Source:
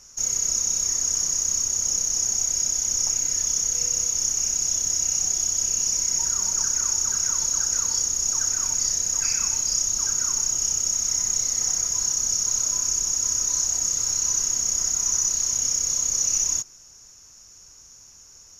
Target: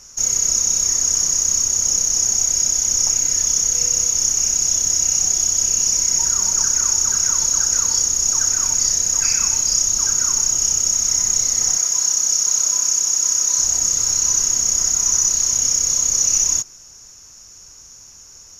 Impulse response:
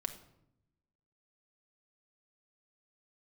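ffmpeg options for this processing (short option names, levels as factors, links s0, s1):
-filter_complex "[0:a]asettb=1/sr,asplit=3[s0][s1][s2];[s0]atrim=end=11.774[s3];[s1]atrim=start=11.77:end=13.59,asetpts=PTS-STARTPTS,afade=t=in:d=0.004:c=qsin,afade=t=out:st=1.816:d=0.004:c=qsin,highpass=f=500:p=1[s4];[s2]atrim=start=13.586[s5];[s3][s4]acrossfade=d=0.004:c1=hsin:c2=qsin[s6];[s6][s5]acrossfade=d=0.004:c1=qsin:c2=hsin,volume=2"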